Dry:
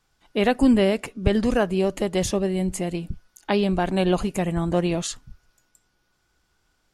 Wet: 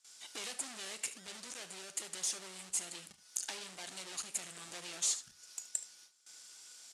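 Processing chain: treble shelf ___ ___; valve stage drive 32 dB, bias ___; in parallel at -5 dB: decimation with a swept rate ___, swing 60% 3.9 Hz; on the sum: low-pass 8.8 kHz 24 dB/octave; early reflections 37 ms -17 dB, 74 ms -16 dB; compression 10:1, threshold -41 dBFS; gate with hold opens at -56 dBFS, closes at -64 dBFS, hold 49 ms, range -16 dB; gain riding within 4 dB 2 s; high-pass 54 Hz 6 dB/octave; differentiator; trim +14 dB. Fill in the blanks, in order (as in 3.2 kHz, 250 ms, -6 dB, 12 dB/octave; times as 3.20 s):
5.3 kHz, +11 dB, 0.3, 35×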